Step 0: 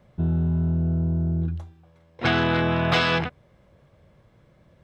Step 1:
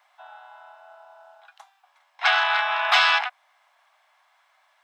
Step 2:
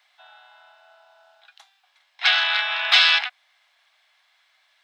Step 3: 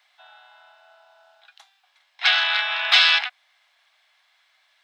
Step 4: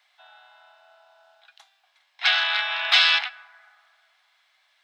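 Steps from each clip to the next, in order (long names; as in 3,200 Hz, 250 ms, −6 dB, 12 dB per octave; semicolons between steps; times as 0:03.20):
Butterworth high-pass 710 Hz 72 dB per octave; level +5 dB
octave-band graphic EQ 500/1,000/2,000/4,000 Hz −4/−8/+3/+9 dB; level −1 dB
no processing that can be heard
dense smooth reverb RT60 2.3 s, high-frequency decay 0.3×, DRR 17.5 dB; level −2 dB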